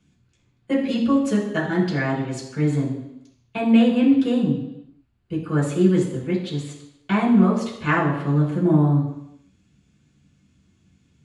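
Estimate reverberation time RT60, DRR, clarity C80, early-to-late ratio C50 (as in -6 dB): 0.85 s, -6.5 dB, 8.5 dB, 5.5 dB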